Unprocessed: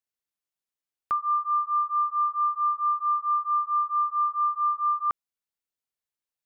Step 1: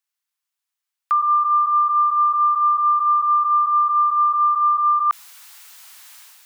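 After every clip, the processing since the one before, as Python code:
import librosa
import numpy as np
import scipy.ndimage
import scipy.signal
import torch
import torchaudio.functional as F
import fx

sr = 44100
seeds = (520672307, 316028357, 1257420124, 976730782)

y = scipy.signal.sosfilt(scipy.signal.butter(4, 870.0, 'highpass', fs=sr, output='sos'), x)
y = fx.sustainer(y, sr, db_per_s=26.0)
y = y * librosa.db_to_amplitude(7.5)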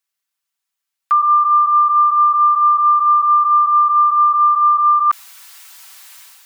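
y = x + 0.64 * np.pad(x, (int(5.2 * sr / 1000.0), 0))[:len(x)]
y = y * librosa.db_to_amplitude(2.0)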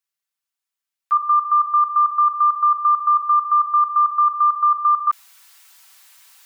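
y = fx.level_steps(x, sr, step_db=12)
y = y * librosa.db_to_amplitude(-2.0)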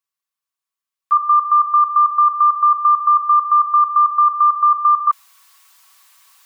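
y = fx.small_body(x, sr, hz=(1100.0,), ring_ms=40, db=14)
y = y * librosa.db_to_amplitude(-2.0)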